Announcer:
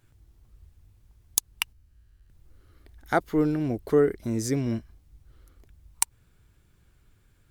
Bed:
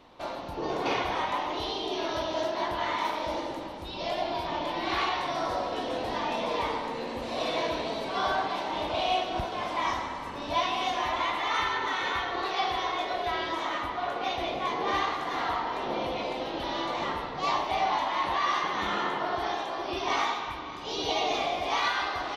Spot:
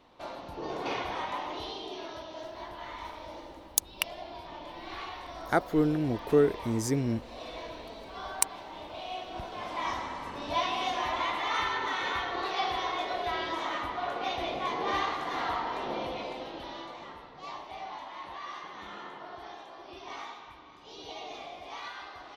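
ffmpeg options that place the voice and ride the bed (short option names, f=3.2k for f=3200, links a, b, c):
-filter_complex "[0:a]adelay=2400,volume=-2dB[a];[1:a]volume=5dB,afade=t=out:st=1.51:d=0.73:silence=0.446684,afade=t=in:st=9.1:d=1.09:silence=0.316228,afade=t=out:st=15.74:d=1.28:silence=0.251189[b];[a][b]amix=inputs=2:normalize=0"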